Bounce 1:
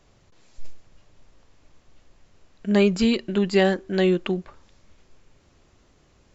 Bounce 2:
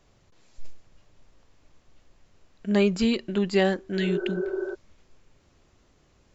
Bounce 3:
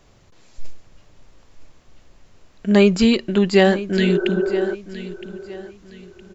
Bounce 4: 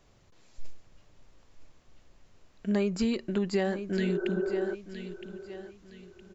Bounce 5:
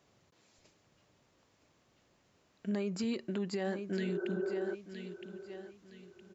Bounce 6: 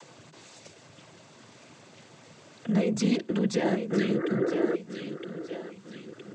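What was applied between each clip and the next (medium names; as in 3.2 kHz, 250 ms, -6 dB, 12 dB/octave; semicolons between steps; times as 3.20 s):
spectral replace 4.00–4.72 s, 350–1600 Hz before; trim -3 dB
feedback delay 965 ms, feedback 32%, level -15 dB; trim +8 dB
dynamic bell 3.2 kHz, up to -6 dB, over -41 dBFS, Q 1.6; compression 4:1, threshold -16 dBFS, peak gain reduction 6.5 dB; trim -8.5 dB
high-pass 120 Hz 12 dB/octave; peak limiter -23 dBFS, peak gain reduction 6 dB; trim -4 dB
in parallel at -1.5 dB: upward compressor, threshold -41 dBFS; on the sum: noise-vocoded speech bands 16; trim +4 dB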